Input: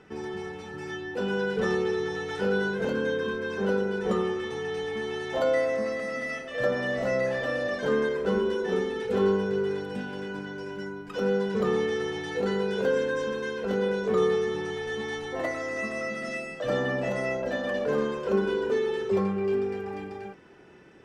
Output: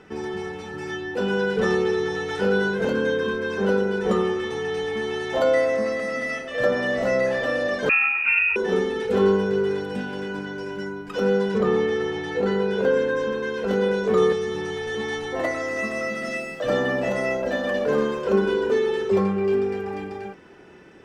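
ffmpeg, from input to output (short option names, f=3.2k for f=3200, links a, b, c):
-filter_complex "[0:a]asettb=1/sr,asplit=3[a][b][c];[a]atrim=end=7.894[d];[b]atrim=start=7.89:end=8.56,asetpts=PTS-STARTPTS,afade=t=in:d=0.004:c=qsin,afade=t=out:st=0.666:d=0.004:c=qsin,lowpass=f=2.5k:t=q:w=0.5098,lowpass=f=2.5k:t=q:w=0.6013,lowpass=f=2.5k:t=q:w=0.9,lowpass=f=2.5k:t=q:w=2.563,afreqshift=-2900[e];[c]atrim=start=8.556[f];[d][e]acrossfade=d=0.004:c1=hsin:c2=qsin[g];[g][f]acrossfade=d=0.004:c1=qsin:c2=hsin,asettb=1/sr,asplit=3[h][i][j];[h]atrim=end=11.584[k];[i]atrim=start=11.58:end=13.54,asetpts=PTS-STARTPTS,afade=t=in:d=0.004:c=qsin,afade=t=out:st=1.956:d=0.004:c=qsin,highshelf=f=4.3k:g=-9.5[l];[j]atrim=start=13.536[m];[k][l]acrossfade=d=0.004:c1=hsin:c2=qsin[n];[n][m]acrossfade=d=0.004:c1=qsin:c2=hsin,asettb=1/sr,asplit=3[o][p][q];[o]atrim=end=14.324[r];[p]atrim=start=14.32:end=14.95,asetpts=PTS-STARTPTS,afade=t=in:d=0.004:c=qsin,afade=t=out:st=0.626:d=0.004:c=qsin,acrossover=split=190|3000[s][t][u];[t]acompressor=threshold=-32dB:ratio=2:attack=3.2:release=140:knee=2.83:detection=peak[v];[s][v][u]amix=inputs=3:normalize=0[w];[q]atrim=start=14.946[x];[r][w]acrossfade=d=0.004:c1=hsin:c2=qsin[y];[y][x]acrossfade=d=0.004:c1=qsin:c2=hsin,asettb=1/sr,asplit=3[z][aa][ab];[z]atrim=end=15.664[ac];[aa]atrim=start=15.66:end=18.22,asetpts=PTS-STARTPTS,afade=t=in:d=0.004:c=qsin,afade=t=out:st=2.556:d=0.004:c=qsin,aeval=exprs='sgn(val(0))*max(abs(val(0))-0.00106,0)':c=same[ad];[ab]atrim=start=18.216[ae];[ac][ad]acrossfade=d=0.004:c1=hsin:c2=qsin[af];[af][ae]acrossfade=d=0.004:c1=qsin:c2=hsin,equalizer=f=130:w=5.4:g=-5,volume=5dB"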